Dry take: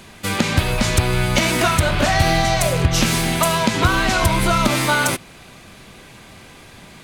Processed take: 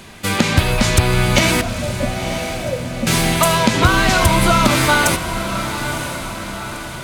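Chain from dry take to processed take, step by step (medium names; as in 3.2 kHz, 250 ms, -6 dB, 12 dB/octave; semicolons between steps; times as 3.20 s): 1.61–3.07 s: two resonant band-passes 360 Hz, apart 1.1 oct; echo that smears into a reverb 976 ms, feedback 52%, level -9 dB; trim +3 dB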